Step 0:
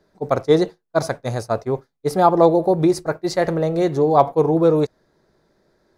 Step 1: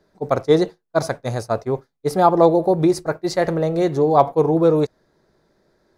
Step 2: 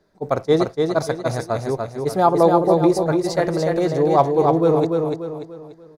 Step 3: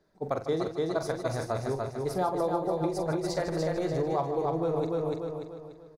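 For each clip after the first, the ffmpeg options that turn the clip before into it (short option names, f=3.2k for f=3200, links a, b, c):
-af anull
-af "aecho=1:1:292|584|876|1168|1460:0.631|0.246|0.096|0.0374|0.0146,volume=-1.5dB"
-af "acompressor=threshold=-19dB:ratio=5,asubboost=boost=3.5:cutoff=99,aecho=1:1:43.73|151.6:0.355|0.282,volume=-6.5dB"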